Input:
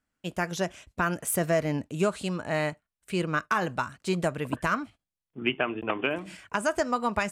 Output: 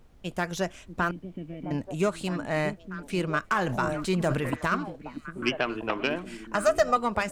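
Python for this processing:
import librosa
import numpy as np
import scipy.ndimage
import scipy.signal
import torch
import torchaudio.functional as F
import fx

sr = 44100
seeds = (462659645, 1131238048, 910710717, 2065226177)

p1 = fx.self_delay(x, sr, depth_ms=0.052)
p2 = fx.formant_cascade(p1, sr, vowel='i', at=(1.11, 1.71))
p3 = fx.dmg_noise_colour(p2, sr, seeds[0], colour='brown', level_db=-53.0)
p4 = fx.comb(p3, sr, ms=1.6, depth=0.97, at=(6.55, 6.97))
p5 = p4 + fx.echo_stepped(p4, sr, ms=638, hz=240.0, octaves=1.4, feedback_pct=70, wet_db=-6.0, dry=0)
y = fx.sustainer(p5, sr, db_per_s=38.0, at=(3.53, 4.53))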